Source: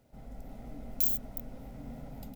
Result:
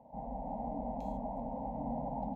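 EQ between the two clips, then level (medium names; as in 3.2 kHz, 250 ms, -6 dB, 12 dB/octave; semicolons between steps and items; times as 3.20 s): high-pass 51 Hz; resonant low-pass 910 Hz, resonance Q 7.8; static phaser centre 370 Hz, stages 6; +7.0 dB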